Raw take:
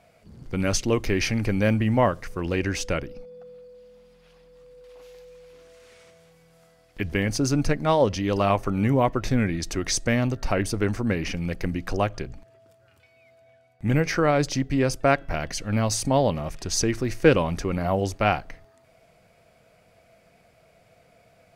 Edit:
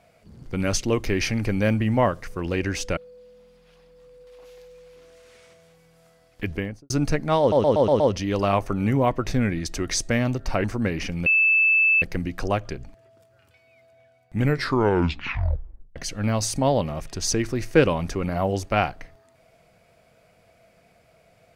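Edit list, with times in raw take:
2.97–3.54 s: delete
7.01–7.47 s: studio fade out
7.97 s: stutter 0.12 s, 6 plays
10.61–10.89 s: delete
11.51 s: add tone 2.63 kHz -15 dBFS 0.76 s
13.90 s: tape stop 1.55 s

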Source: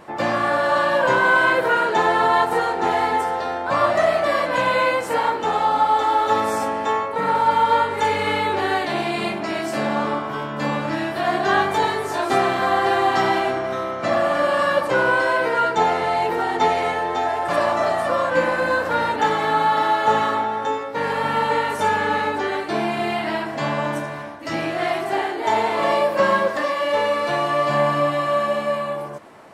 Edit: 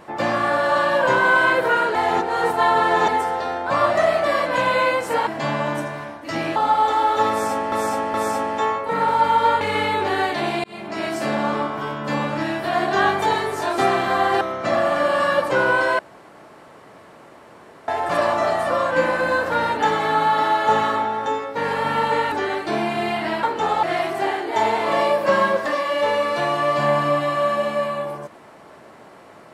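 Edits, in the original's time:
1.95–3.08 s: reverse
5.27–5.67 s: swap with 23.45–24.74 s
6.41–6.83 s: loop, 3 plays
7.88–8.13 s: delete
9.16–9.57 s: fade in
12.93–13.80 s: delete
15.38–17.27 s: room tone
21.71–22.34 s: delete

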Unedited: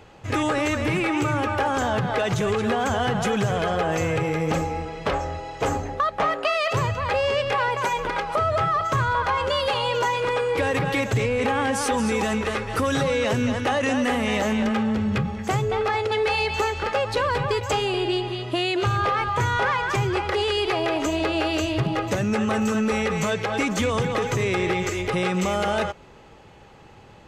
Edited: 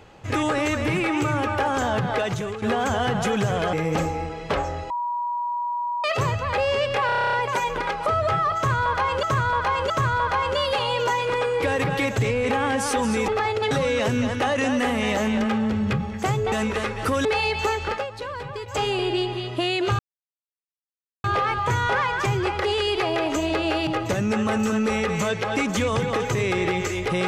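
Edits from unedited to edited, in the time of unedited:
2.16–2.62 s: fade out, to -12.5 dB
3.73–4.29 s: delete
5.46–6.60 s: bleep 963 Hz -23.5 dBFS
7.62 s: stutter 0.03 s, 10 plays
8.85–9.52 s: loop, 3 plays
12.23–12.96 s: swap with 15.77–16.20 s
16.86–17.78 s: dip -9.5 dB, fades 0.16 s
18.94 s: insert silence 1.25 s
21.57–21.89 s: delete

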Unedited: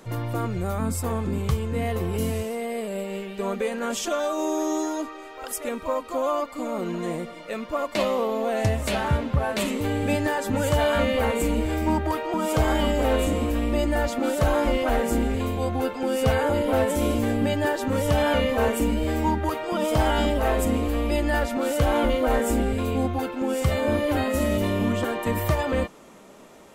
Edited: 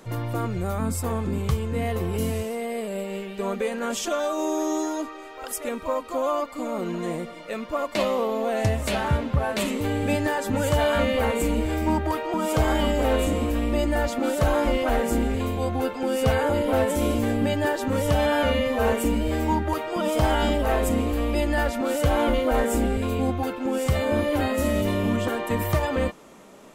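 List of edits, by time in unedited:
18.15–18.63 s: stretch 1.5×

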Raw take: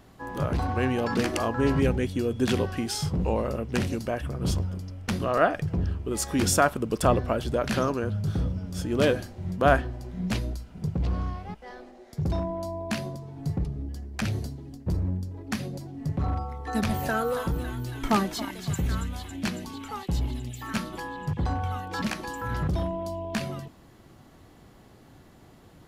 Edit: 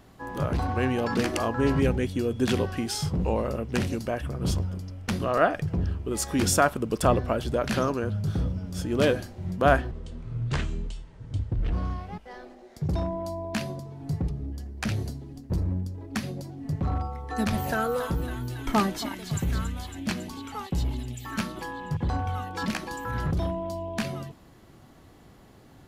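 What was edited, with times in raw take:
9.91–11.09 s: speed 65%

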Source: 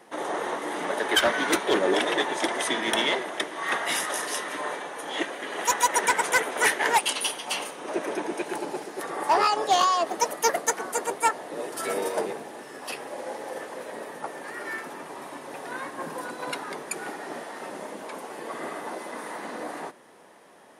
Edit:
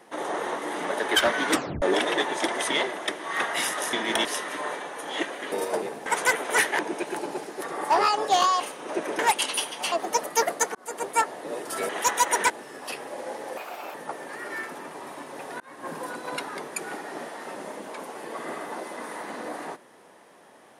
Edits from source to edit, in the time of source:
1.52 s: tape stop 0.30 s
2.71–3.03 s: move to 4.25 s
5.52–6.13 s: swap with 11.96–12.50 s
6.86–7.59 s: swap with 8.18–9.99 s
10.82–11.16 s: fade in
13.57–14.09 s: speed 140%
15.75–16.06 s: fade in linear

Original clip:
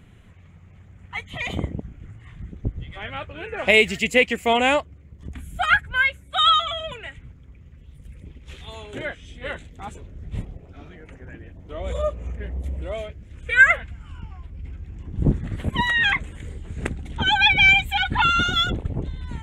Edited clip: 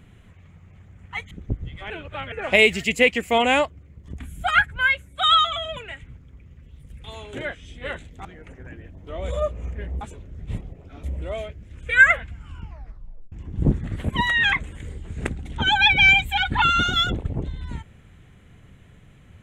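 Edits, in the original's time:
1.31–2.46 s: delete
3.05–3.47 s: reverse
8.19–8.64 s: delete
9.85–10.87 s: move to 12.63 s
14.26 s: tape stop 0.66 s

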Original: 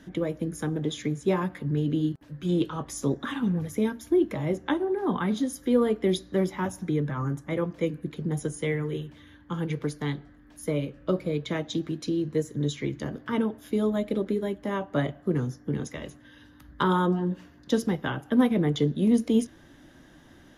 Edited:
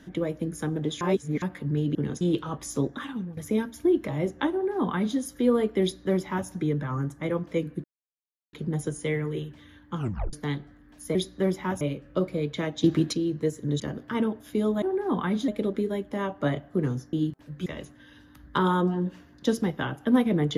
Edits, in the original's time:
1.01–1.42 s: reverse
1.95–2.48 s: swap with 15.65–15.91 s
3.07–3.64 s: fade out, to -14 dB
4.79–5.45 s: copy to 14.00 s
6.09–6.75 s: copy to 10.73 s
8.11 s: insert silence 0.69 s
9.55 s: tape stop 0.36 s
11.76–12.05 s: gain +8.5 dB
12.72–12.98 s: delete

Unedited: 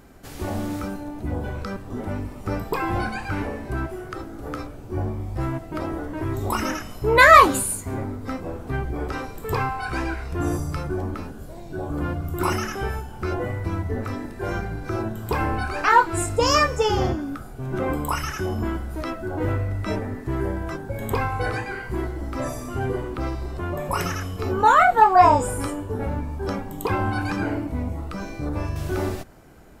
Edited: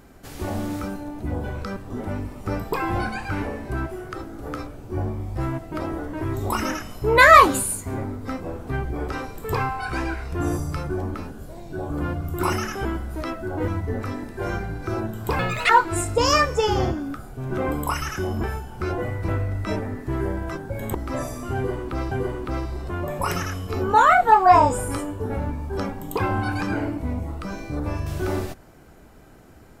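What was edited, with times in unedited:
12.85–13.70 s: swap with 18.65–19.48 s
15.41–15.91 s: speed 164%
21.14–22.20 s: delete
22.81–23.37 s: loop, 2 plays

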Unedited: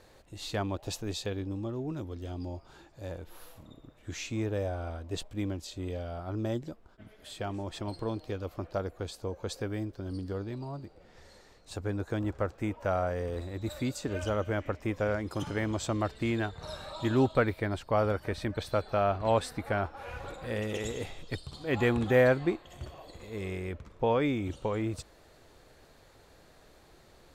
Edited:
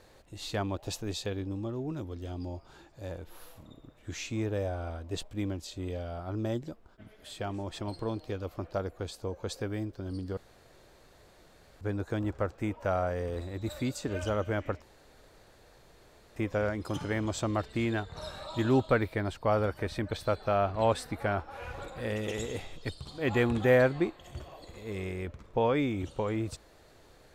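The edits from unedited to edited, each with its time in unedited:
10.37–11.81 s: room tone
14.82 s: insert room tone 1.54 s

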